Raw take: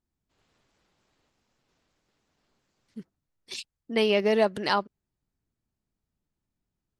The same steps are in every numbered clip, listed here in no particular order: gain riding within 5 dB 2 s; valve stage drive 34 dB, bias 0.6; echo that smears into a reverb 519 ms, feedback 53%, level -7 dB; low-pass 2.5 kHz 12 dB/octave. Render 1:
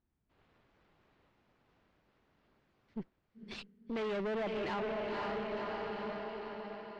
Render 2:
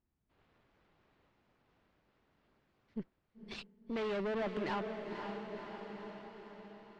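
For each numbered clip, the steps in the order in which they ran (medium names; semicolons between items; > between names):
echo that smears into a reverb > gain riding > valve stage > low-pass; valve stage > echo that smears into a reverb > gain riding > low-pass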